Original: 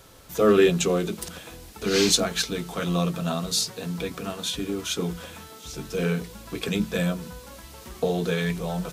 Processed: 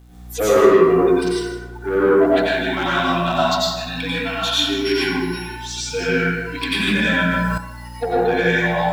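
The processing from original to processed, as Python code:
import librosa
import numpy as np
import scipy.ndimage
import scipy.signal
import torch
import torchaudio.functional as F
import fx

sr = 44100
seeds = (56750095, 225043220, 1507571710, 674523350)

p1 = fx.sample_sort(x, sr, block=8, at=(4.56, 5.33))
p2 = scipy.signal.sosfilt(scipy.signal.butter(4, 280.0, 'highpass', fs=sr, output='sos'), p1)
p3 = fx.env_lowpass_down(p2, sr, base_hz=900.0, full_db=-20.5)
p4 = fx.cheby2_lowpass(p3, sr, hz=3300.0, order=4, stop_db=40, at=(1.32, 2.32))
p5 = fx.noise_reduce_blind(p4, sr, reduce_db=29)
p6 = fx.rider(p5, sr, range_db=4, speed_s=2.0)
p7 = p5 + F.gain(torch.from_numpy(p6), -2.0).numpy()
p8 = fx.add_hum(p7, sr, base_hz=60, snr_db=23)
p9 = fx.quant_dither(p8, sr, seeds[0], bits=10, dither='none')
p10 = 10.0 ** (-19.5 / 20.0) * np.tanh(p9 / 10.0 ** (-19.5 / 20.0))
p11 = p10 + fx.echo_single(p10, sr, ms=158, db=-13.5, dry=0)
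p12 = fx.rev_plate(p11, sr, seeds[1], rt60_s=1.2, hf_ratio=0.45, predelay_ms=80, drr_db=-7.5)
p13 = fx.env_flatten(p12, sr, amount_pct=70, at=(6.87, 7.58))
y = F.gain(torch.from_numpy(p13), 3.0).numpy()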